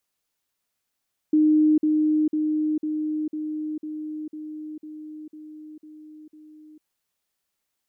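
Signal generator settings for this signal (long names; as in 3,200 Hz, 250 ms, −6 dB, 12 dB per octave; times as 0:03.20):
level staircase 307 Hz −14.5 dBFS, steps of −3 dB, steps 11, 0.45 s 0.05 s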